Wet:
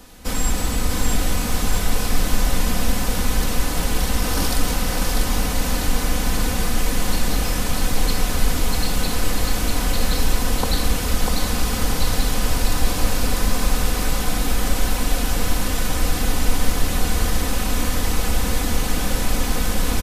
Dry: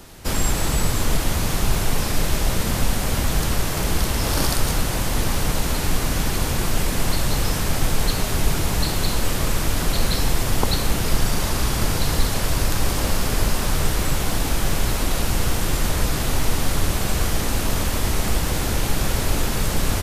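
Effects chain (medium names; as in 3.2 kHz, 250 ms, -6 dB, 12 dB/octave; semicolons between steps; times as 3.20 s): comb 4 ms, depth 58%; two-band feedback delay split 330 Hz, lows 196 ms, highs 645 ms, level -4 dB; trim -3 dB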